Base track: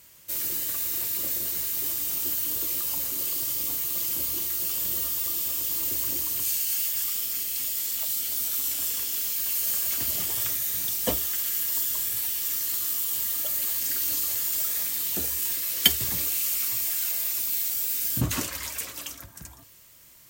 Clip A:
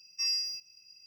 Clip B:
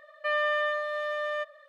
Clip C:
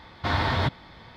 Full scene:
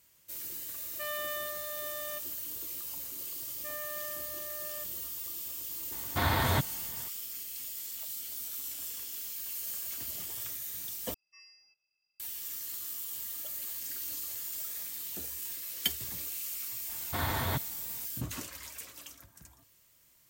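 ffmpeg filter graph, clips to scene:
-filter_complex "[2:a]asplit=2[a][b];[3:a]asplit=2[c][d];[0:a]volume=-11.5dB[e];[a]highshelf=f=2.8k:t=q:w=1.5:g=7.5[f];[b]equalizer=f=340:w=1.5:g=9.5[g];[1:a]acrossover=split=410 2600:gain=0.158 1 0.0631[h][i][j];[h][i][j]amix=inputs=3:normalize=0[k];[e]asplit=2[l][m];[l]atrim=end=11.144[n];[k]atrim=end=1.06,asetpts=PTS-STARTPTS,volume=-10dB[o];[m]atrim=start=12.196[p];[f]atrim=end=1.68,asetpts=PTS-STARTPTS,volume=-10.5dB,afade=t=in:d=0.004:c=hsin,afade=t=out:st=1.676:d=0.004:c=hsin,adelay=750[q];[g]atrim=end=1.68,asetpts=PTS-STARTPTS,volume=-17.5dB,afade=t=in:d=0.004:c=hsin,afade=t=out:st=1.676:d=0.004:c=hsin,adelay=3400[r];[c]atrim=end=1.16,asetpts=PTS-STARTPTS,volume=-3.5dB,afade=t=in:d=0.004:c=hsin,afade=t=out:st=1.156:d=0.004:c=hsin,adelay=5920[s];[d]atrim=end=1.16,asetpts=PTS-STARTPTS,volume=-8dB,afade=t=in:d=0.004:c=hsin,afade=t=out:st=1.156:d=0.004:c=hsin,adelay=16890[t];[n][o]acrossfade=d=0.004:c1=hsin:c2=hsin[u];[u][p]acrossfade=d=0.004:c1=hsin:c2=hsin[v];[v][q][r][s][t]amix=inputs=5:normalize=0"

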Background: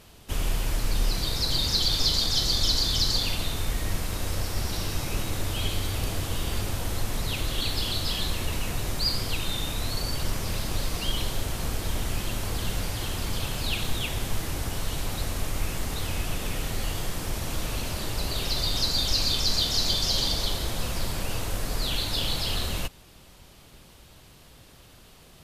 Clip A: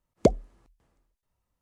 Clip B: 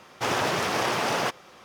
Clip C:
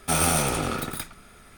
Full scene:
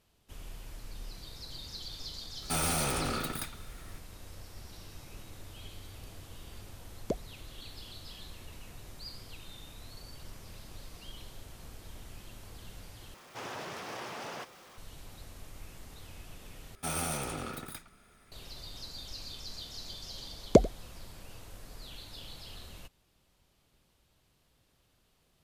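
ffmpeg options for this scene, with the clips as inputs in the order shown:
-filter_complex "[3:a]asplit=2[a][b];[1:a]asplit=2[c][d];[0:a]volume=-19dB[e];[a]asoftclip=type=hard:threshold=-23.5dB[f];[2:a]aeval=exprs='val(0)+0.5*0.0211*sgn(val(0))':c=same[g];[b]asoftclip=type=tanh:threshold=-12.5dB[h];[d]aecho=1:1:90:0.1[i];[e]asplit=3[j][k][l];[j]atrim=end=13.144[m];[g]atrim=end=1.64,asetpts=PTS-STARTPTS,volume=-17dB[n];[k]atrim=start=14.776:end=16.754[o];[h]atrim=end=1.57,asetpts=PTS-STARTPTS,volume=-11dB[p];[l]atrim=start=18.316[q];[f]atrim=end=1.57,asetpts=PTS-STARTPTS,volume=-4.5dB,afade=t=in:d=0.004:c=hsin,afade=t=out:st=1.566:d=0.004:c=hsin,adelay=2420[r];[c]atrim=end=1.61,asetpts=PTS-STARTPTS,volume=-14dB,afade=t=in:d=0.004:c=hsin,afade=t=out:st=1.606:d=0.004:c=hsin,adelay=6850[s];[i]atrim=end=1.61,asetpts=PTS-STARTPTS,afade=t=in:d=0.004:c=hsin,afade=t=out:st=1.606:d=0.004:c=hsin,adelay=20300[t];[m][n]acrossfade=d=0.004:c1=hsin:c2=hsin[u];[u][o]acrossfade=d=0.004:c1=hsin:c2=hsin[v];[v][p]acrossfade=d=0.004:c1=hsin:c2=hsin[w];[w][q]acrossfade=d=0.004:c1=hsin:c2=hsin[x];[x][r][s][t]amix=inputs=4:normalize=0"

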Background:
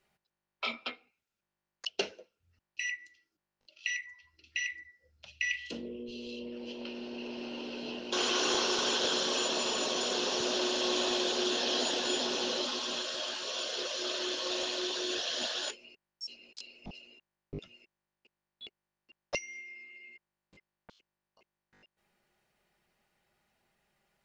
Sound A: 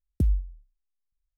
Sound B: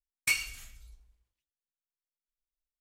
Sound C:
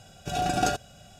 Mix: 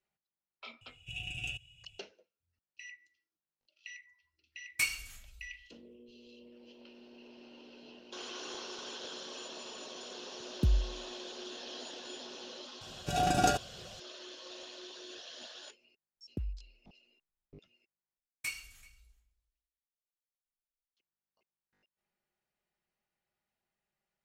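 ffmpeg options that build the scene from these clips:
-filter_complex "[3:a]asplit=2[a][b];[2:a]asplit=2[c][d];[1:a]asplit=2[e][f];[0:a]volume=-14dB[g];[a]firequalizer=gain_entry='entry(120,0);entry(190,-19);entry(340,-20);entry(510,-24);entry(930,-27);entry(1400,-29);entry(2700,15);entry(4200,-21);entry(7600,-6);entry(12000,-13)':delay=0.05:min_phase=1[h];[f]bass=f=250:g=-8,treble=f=4k:g=-14[i];[d]aecho=1:1:384:0.0708[j];[g]asplit=2[k][l];[k]atrim=end=18.174[m];[j]atrim=end=2.8,asetpts=PTS-STARTPTS,volume=-10.5dB[n];[l]atrim=start=20.966[o];[h]atrim=end=1.19,asetpts=PTS-STARTPTS,volume=-9.5dB,afade=t=in:d=0.004:c=hsin,afade=t=out:st=1.186:d=0.004:c=hsin,adelay=810[p];[c]atrim=end=2.8,asetpts=PTS-STARTPTS,volume=-3dB,afade=t=in:d=0.004:c=hsin,afade=t=out:st=2.796:d=0.004:c=hsin,adelay=4520[q];[e]atrim=end=1.37,asetpts=PTS-STARTPTS,volume=-4dB,afade=t=in:d=0.004:c=hsin,afade=t=out:st=1.366:d=0.004:c=hsin,adelay=10430[r];[b]atrim=end=1.19,asetpts=PTS-STARTPTS,volume=-2dB,afade=t=in:d=0.004:c=hsin,afade=t=out:st=1.186:d=0.004:c=hsin,adelay=12810[s];[i]atrim=end=1.37,asetpts=PTS-STARTPTS,volume=-7dB,afade=t=in:d=0.004:c=hsin,afade=t=out:st=1.366:d=0.004:c=hsin,adelay=16170[t];[m][n]acrossfade=d=0.004:c1=hsin:c2=hsin[u];[u][o]acrossfade=d=0.004:c1=hsin:c2=hsin[v];[v][p][q][r][s][t]amix=inputs=6:normalize=0"

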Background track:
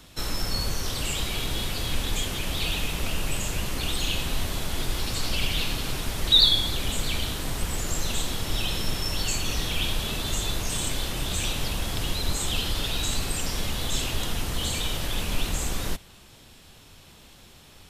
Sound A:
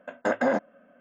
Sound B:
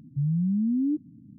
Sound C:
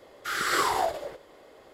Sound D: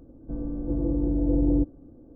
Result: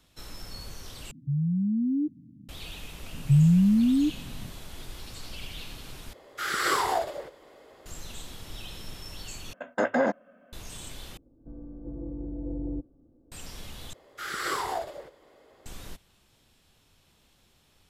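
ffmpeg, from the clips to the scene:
-filter_complex "[2:a]asplit=2[a][b];[3:a]asplit=2[c][d];[0:a]volume=-13.5dB[e];[b]equalizer=f=90:w=0.43:g=14.5[f];[d]lowshelf=f=200:g=3[g];[e]asplit=6[h][i][j][k][l][m];[h]atrim=end=1.114[n];[a]atrim=end=1.38,asetpts=PTS-STARTPTS,volume=-1.5dB[o];[i]atrim=start=2.486:end=6.134[p];[c]atrim=end=1.73,asetpts=PTS-STARTPTS,volume=-0.5dB[q];[j]atrim=start=7.856:end=9.534[r];[1:a]atrim=end=1,asetpts=PTS-STARTPTS,volume=-0.5dB[s];[k]atrim=start=10.526:end=11.174[t];[4:a]atrim=end=2.15,asetpts=PTS-STARTPTS,volume=-11.5dB[u];[l]atrim=start=13.316:end=13.934[v];[g]atrim=end=1.73,asetpts=PTS-STARTPTS,volume=-5.5dB[w];[m]atrim=start=15.656[x];[f]atrim=end=1.38,asetpts=PTS-STARTPTS,volume=-4dB,afade=t=in:d=0.004:c=hsin,afade=t=out:st=1.376:d=0.004:c=hsin,adelay=138033S[y];[n][o]acrossfade=d=0.004:c1=hsin:c2=hsin[z];[z][p]acrossfade=d=0.004:c1=hsin:c2=hsin[aa];[aa][q]acrossfade=d=0.004:c1=hsin:c2=hsin[ab];[ab][r]acrossfade=d=0.004:c1=hsin:c2=hsin[ac];[ac][s]acrossfade=d=0.004:c1=hsin:c2=hsin[ad];[ad][t]acrossfade=d=0.004:c1=hsin:c2=hsin[ae];[ae][u]acrossfade=d=0.004:c1=hsin:c2=hsin[af];[af][v]acrossfade=d=0.004:c1=hsin:c2=hsin[ag];[ag][w]acrossfade=d=0.004:c1=hsin:c2=hsin[ah];[ah][x]acrossfade=d=0.004:c1=hsin:c2=hsin[ai];[ai][y]amix=inputs=2:normalize=0"

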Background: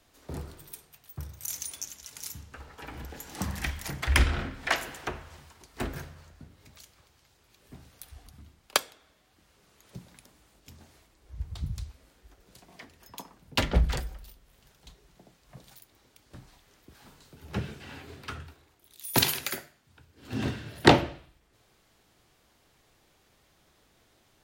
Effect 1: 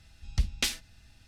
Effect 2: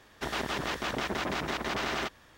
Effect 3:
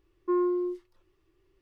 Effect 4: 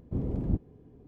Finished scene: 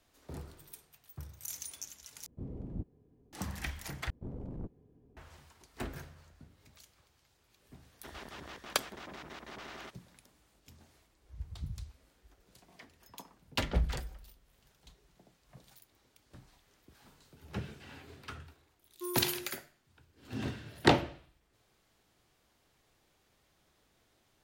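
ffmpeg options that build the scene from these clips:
-filter_complex "[4:a]asplit=2[a][b];[0:a]volume=-6.5dB[c];[b]aeval=exprs='(tanh(31.6*val(0)+0.55)-tanh(0.55))/31.6':c=same[d];[c]asplit=3[e][f][g];[e]atrim=end=2.264[h];[a]atrim=end=1.07,asetpts=PTS-STARTPTS,volume=-11.5dB[i];[f]atrim=start=3.326:end=4.104[j];[d]atrim=end=1.07,asetpts=PTS-STARTPTS,volume=-7dB[k];[g]atrim=start=5.166[l];[2:a]atrim=end=2.37,asetpts=PTS-STARTPTS,volume=-15dB,afade=t=in:d=0.004:c=hsin,afade=t=out:st=2.366:d=0.004:c=hsin,adelay=7820[m];[3:a]atrim=end=1.61,asetpts=PTS-STARTPTS,volume=-14.5dB,afade=t=in:d=0.004:c=hsin,afade=t=out:st=1.606:d=0.004:c=hsin,adelay=18730[n];[h][i]acrossfade=d=0.004:c1=hsin:c2=hsin[o];[o][j]acrossfade=d=0.004:c1=hsin:c2=hsin[p];[p][k]acrossfade=d=0.004:c1=hsin:c2=hsin[q];[q][l]acrossfade=d=0.004:c1=hsin:c2=hsin[r];[r][m][n]amix=inputs=3:normalize=0"

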